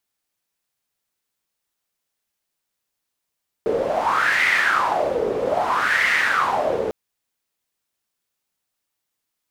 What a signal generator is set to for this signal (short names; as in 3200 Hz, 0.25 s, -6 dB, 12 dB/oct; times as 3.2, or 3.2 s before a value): wind-like swept noise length 3.25 s, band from 440 Hz, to 2000 Hz, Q 6.2, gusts 2, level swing 4 dB